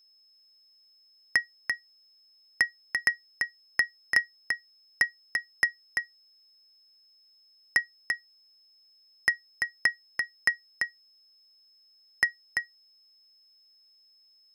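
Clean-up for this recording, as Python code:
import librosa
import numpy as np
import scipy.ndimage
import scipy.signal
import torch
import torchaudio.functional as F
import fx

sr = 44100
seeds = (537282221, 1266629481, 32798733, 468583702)

y = fx.notch(x, sr, hz=5200.0, q=30.0)
y = fx.fix_echo_inverse(y, sr, delay_ms=340, level_db=-5.0)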